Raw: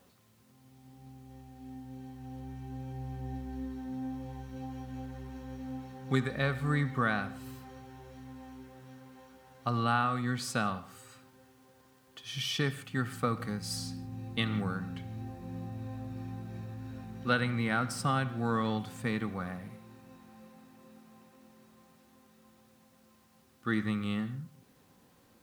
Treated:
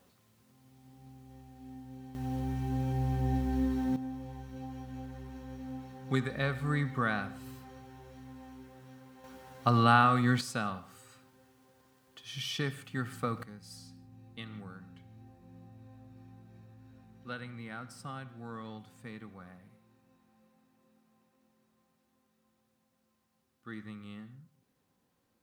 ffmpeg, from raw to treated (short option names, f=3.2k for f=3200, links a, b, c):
-af "asetnsamples=n=441:p=0,asendcmd='2.15 volume volume 9dB;3.96 volume volume -1.5dB;9.24 volume volume 5.5dB;10.41 volume volume -3dB;13.43 volume volume -13dB',volume=-2dB"